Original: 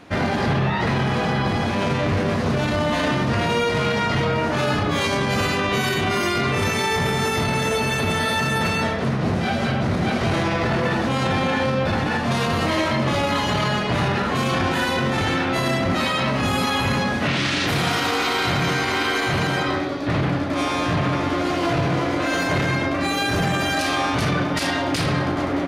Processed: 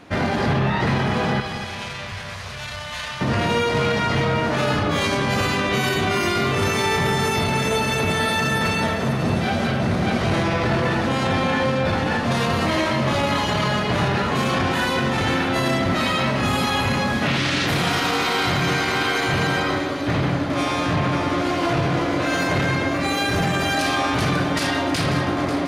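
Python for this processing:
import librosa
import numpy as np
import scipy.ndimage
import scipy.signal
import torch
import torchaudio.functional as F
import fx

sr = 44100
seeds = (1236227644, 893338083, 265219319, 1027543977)

y = fx.tone_stack(x, sr, knobs='10-0-10', at=(1.4, 3.21))
y = fx.echo_split(y, sr, split_hz=2300.0, low_ms=241, high_ms=542, feedback_pct=52, wet_db=-11.0)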